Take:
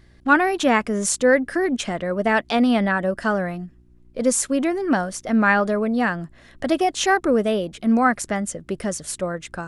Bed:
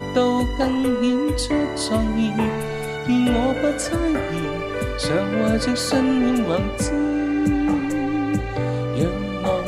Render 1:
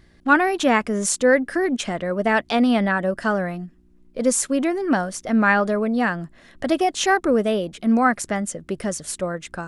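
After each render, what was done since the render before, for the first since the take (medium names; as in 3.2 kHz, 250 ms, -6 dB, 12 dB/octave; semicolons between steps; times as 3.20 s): de-hum 60 Hz, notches 2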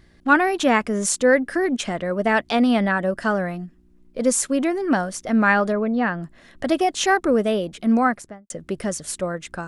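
5.72–6.23 s: distance through air 190 m; 7.95–8.50 s: studio fade out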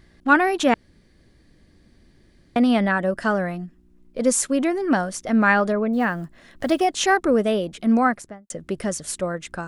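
0.74–2.56 s: room tone; 5.93–6.87 s: block-companded coder 7-bit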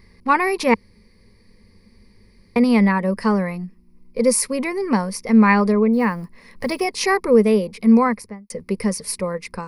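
rippled EQ curve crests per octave 0.88, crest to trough 15 dB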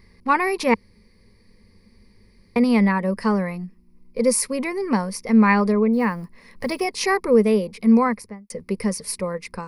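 trim -2 dB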